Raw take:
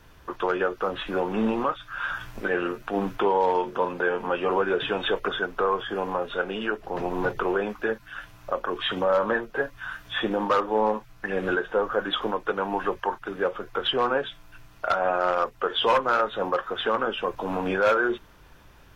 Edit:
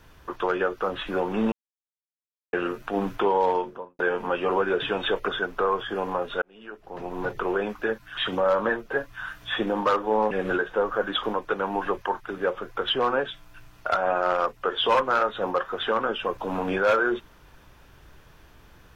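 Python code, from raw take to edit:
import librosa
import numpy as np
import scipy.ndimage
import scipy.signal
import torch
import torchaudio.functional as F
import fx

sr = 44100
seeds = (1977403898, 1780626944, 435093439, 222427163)

y = fx.studio_fade_out(x, sr, start_s=3.46, length_s=0.53)
y = fx.edit(y, sr, fx.silence(start_s=1.52, length_s=1.01),
    fx.fade_in_span(start_s=6.42, length_s=1.23),
    fx.cut(start_s=8.17, length_s=0.64),
    fx.cut(start_s=10.95, length_s=0.34), tone=tone)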